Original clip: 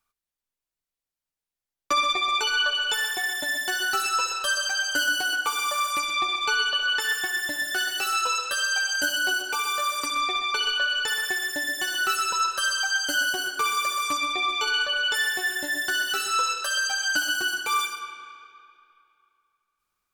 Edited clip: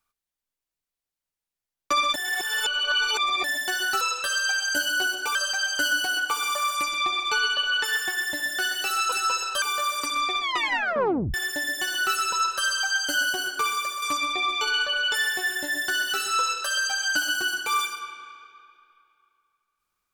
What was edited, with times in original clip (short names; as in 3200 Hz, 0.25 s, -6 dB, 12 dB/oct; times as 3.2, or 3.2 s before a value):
2.14–3.44 reverse
4.01–4.51 swap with 8.28–9.62
10.41 tape stop 0.93 s
13.6–14.02 fade out, to -6 dB